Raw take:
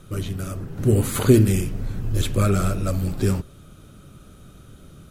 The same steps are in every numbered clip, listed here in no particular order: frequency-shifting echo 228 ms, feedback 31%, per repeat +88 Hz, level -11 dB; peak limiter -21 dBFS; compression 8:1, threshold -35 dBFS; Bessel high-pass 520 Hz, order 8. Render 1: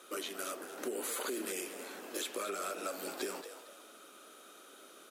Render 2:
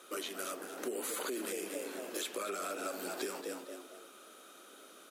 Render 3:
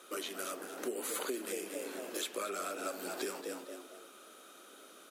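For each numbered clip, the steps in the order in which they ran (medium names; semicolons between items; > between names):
Bessel high-pass > peak limiter > compression > frequency-shifting echo; frequency-shifting echo > Bessel high-pass > peak limiter > compression; frequency-shifting echo > Bessel high-pass > compression > peak limiter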